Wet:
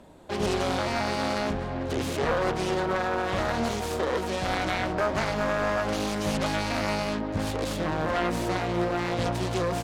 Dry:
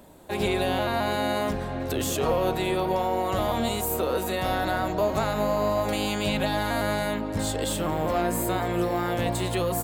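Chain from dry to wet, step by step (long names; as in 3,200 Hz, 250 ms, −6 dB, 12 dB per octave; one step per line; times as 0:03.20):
phase distortion by the signal itself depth 0.48 ms
high-frequency loss of the air 55 metres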